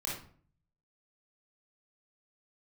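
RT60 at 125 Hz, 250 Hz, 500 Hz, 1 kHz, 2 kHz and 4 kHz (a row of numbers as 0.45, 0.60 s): 0.90, 0.65, 0.50, 0.45, 0.40, 0.35 s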